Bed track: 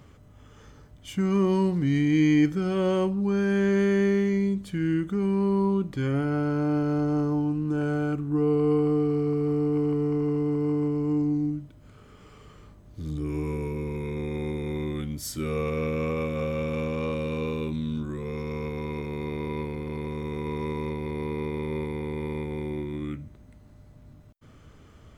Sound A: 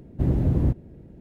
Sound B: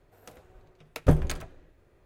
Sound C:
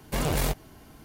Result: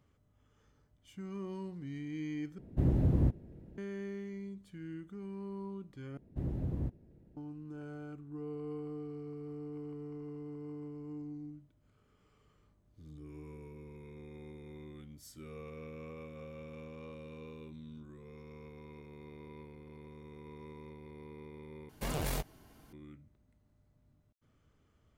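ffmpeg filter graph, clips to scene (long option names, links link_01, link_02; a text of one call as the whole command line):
ffmpeg -i bed.wav -i cue0.wav -i cue1.wav -i cue2.wav -filter_complex "[1:a]asplit=2[link_01][link_02];[0:a]volume=-19dB,asplit=4[link_03][link_04][link_05][link_06];[link_03]atrim=end=2.584[link_07];[link_01]atrim=end=1.2,asetpts=PTS-STARTPTS,volume=-6.5dB[link_08];[link_04]atrim=start=3.776:end=6.174[link_09];[link_02]atrim=end=1.2,asetpts=PTS-STARTPTS,volume=-14.5dB[link_10];[link_05]atrim=start=7.366:end=21.894[link_11];[3:a]atrim=end=1.04,asetpts=PTS-STARTPTS,volume=-9dB[link_12];[link_06]atrim=start=22.926[link_13];[link_07][link_08]acrossfade=duration=0.004:curve1=hsin:curve2=hsin[link_14];[link_14][link_09]acrossfade=duration=0.004:curve1=hsin:curve2=hsin[link_15];[link_15][link_10]acrossfade=duration=0.004:curve1=hsin:curve2=hsin[link_16];[link_16][link_11]acrossfade=duration=0.004:curve1=hsin:curve2=hsin[link_17];[link_17][link_12]acrossfade=duration=0.004:curve1=hsin:curve2=hsin[link_18];[link_18][link_13]acrossfade=duration=0.004:curve1=hsin:curve2=hsin" out.wav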